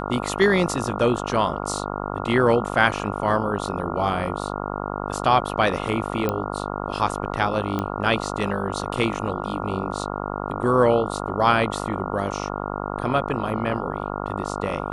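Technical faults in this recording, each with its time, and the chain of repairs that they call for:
buzz 50 Hz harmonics 28 -29 dBFS
6.29 pop -10 dBFS
7.79 pop -13 dBFS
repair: de-click; de-hum 50 Hz, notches 28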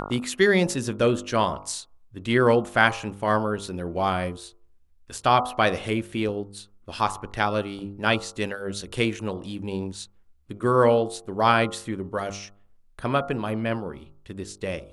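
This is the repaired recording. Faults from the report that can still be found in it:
none

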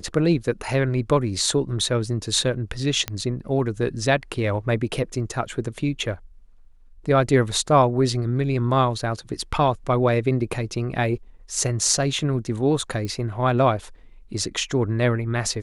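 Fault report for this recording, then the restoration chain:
3.08 pop -10 dBFS
13.05 pop -18 dBFS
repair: de-click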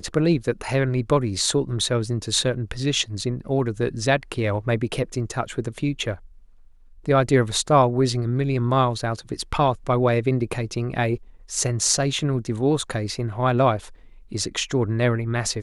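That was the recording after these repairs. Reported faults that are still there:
13.05 pop

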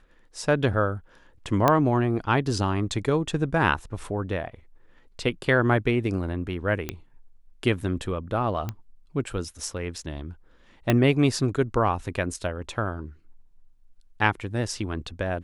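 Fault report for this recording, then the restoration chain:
1.68 pop -6 dBFS
6.89 pop -14 dBFS
8.69 pop -17 dBFS
10.9 pop -7 dBFS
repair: de-click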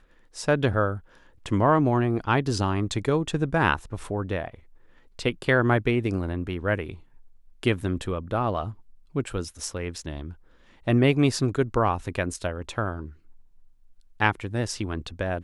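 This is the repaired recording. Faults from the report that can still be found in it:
10.9 pop

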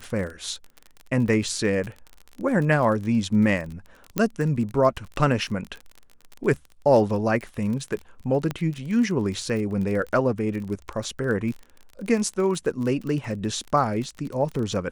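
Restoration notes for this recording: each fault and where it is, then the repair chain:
crackle 29/s -30 dBFS
4.18 pop -9 dBFS
8.51 pop -14 dBFS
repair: de-click

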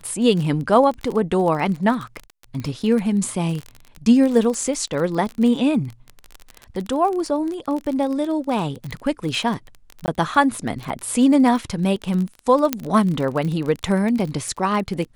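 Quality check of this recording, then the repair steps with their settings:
crackle 30/s -24 dBFS
10.06–10.08 gap 19 ms
12.73 pop -3 dBFS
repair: de-click; interpolate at 10.06, 19 ms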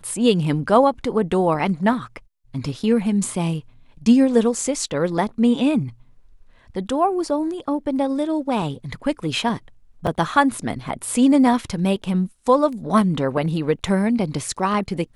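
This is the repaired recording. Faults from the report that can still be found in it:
12.73 pop

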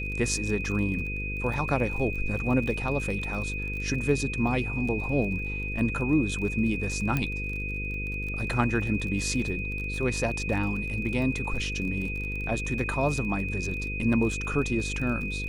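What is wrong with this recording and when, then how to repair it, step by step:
buzz 50 Hz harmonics 10 -34 dBFS
crackle 30/s -34 dBFS
tone 2500 Hz -33 dBFS
7.17 pop -14 dBFS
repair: de-click; de-hum 50 Hz, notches 10; notch 2500 Hz, Q 30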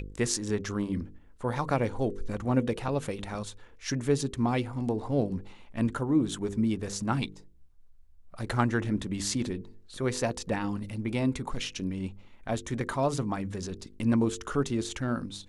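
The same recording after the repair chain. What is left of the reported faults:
none

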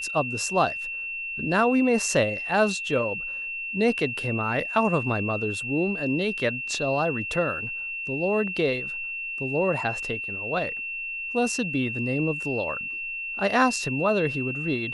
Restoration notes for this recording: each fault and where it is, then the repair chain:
tone 2700 Hz -30 dBFS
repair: notch 2700 Hz, Q 30

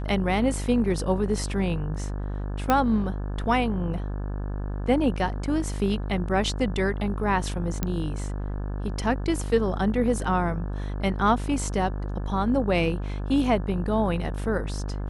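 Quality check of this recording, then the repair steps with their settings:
buzz 50 Hz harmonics 35 -30 dBFS
2.7 pop -8 dBFS
7.83 pop -11 dBFS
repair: de-click; de-hum 50 Hz, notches 35

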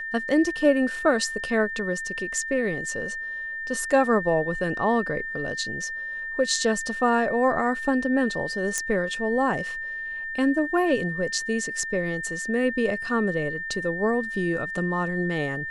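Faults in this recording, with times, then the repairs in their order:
tone 1800 Hz -30 dBFS
8.78 pop -12 dBFS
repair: de-click; notch 1800 Hz, Q 30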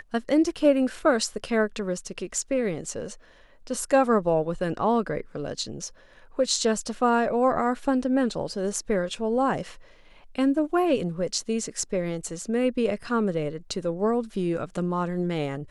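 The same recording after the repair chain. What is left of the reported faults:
8.78 pop

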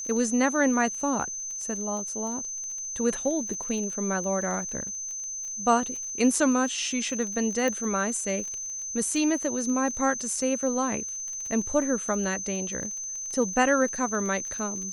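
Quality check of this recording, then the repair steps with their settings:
crackle 26/s -34 dBFS
tone 6200 Hz -32 dBFS
7.68 pop -15 dBFS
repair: de-click; notch 6200 Hz, Q 30

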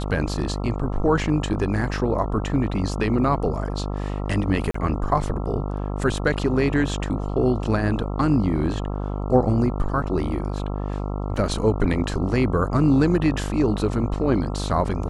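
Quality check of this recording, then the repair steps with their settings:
buzz 50 Hz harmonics 27 -27 dBFS
4.71–4.74 gap 34 ms
11.36 gap 3.6 ms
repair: de-hum 50 Hz, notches 27; interpolate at 4.71, 34 ms; interpolate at 11.36, 3.6 ms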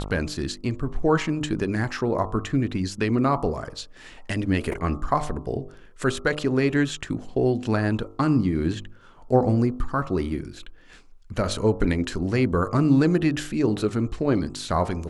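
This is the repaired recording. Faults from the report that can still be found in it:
none

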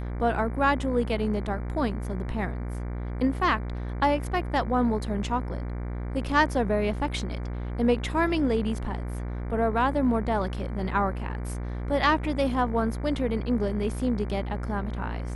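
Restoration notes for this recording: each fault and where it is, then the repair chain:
buzz 60 Hz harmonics 39 -32 dBFS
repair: de-hum 60 Hz, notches 39

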